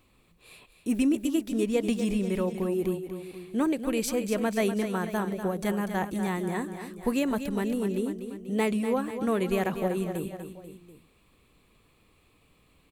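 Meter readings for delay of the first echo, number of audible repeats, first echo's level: 244 ms, 3, −9.5 dB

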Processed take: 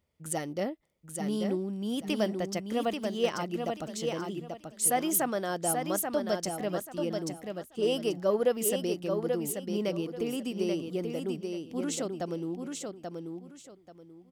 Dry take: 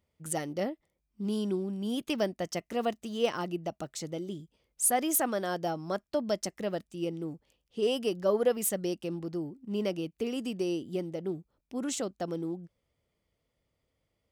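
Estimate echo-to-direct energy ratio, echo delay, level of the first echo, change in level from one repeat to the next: −4.5 dB, 835 ms, −5.0 dB, −12.5 dB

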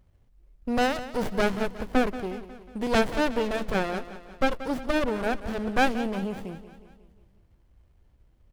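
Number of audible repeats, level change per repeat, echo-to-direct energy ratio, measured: 5, −5.0 dB, −12.5 dB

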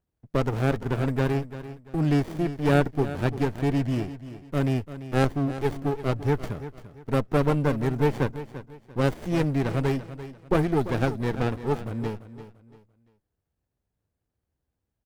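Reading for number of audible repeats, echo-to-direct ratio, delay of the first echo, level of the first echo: 3, −13.0 dB, 342 ms, −13.5 dB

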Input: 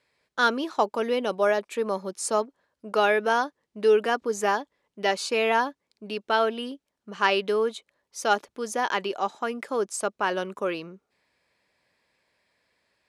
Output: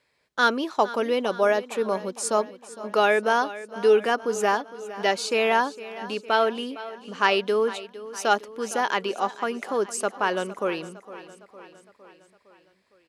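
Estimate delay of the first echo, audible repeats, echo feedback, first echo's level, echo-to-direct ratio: 459 ms, 4, 57%, −16.0 dB, −14.5 dB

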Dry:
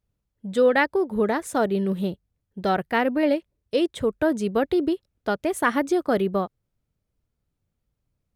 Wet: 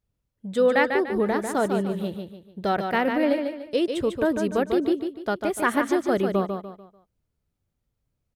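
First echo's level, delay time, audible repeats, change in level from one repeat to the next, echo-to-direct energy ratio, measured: −6.0 dB, 147 ms, 4, −9.0 dB, −5.5 dB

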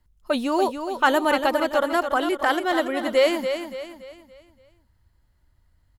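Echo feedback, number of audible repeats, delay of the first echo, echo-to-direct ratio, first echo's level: 40%, 4, 285 ms, −7.0 dB, −8.0 dB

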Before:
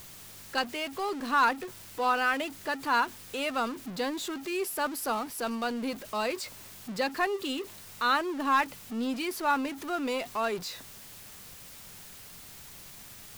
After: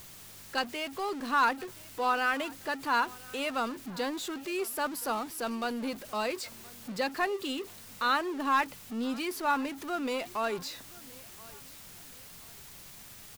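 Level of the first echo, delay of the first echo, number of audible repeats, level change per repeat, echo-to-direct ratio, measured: −22.5 dB, 1,024 ms, 2, −9.5 dB, −22.0 dB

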